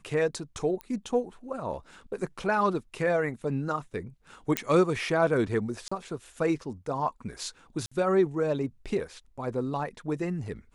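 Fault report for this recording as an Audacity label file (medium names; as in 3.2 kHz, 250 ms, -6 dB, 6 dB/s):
0.810000	0.810000	pop -23 dBFS
4.570000	4.570000	pop -8 dBFS
5.880000	5.920000	dropout 35 ms
7.860000	7.920000	dropout 55 ms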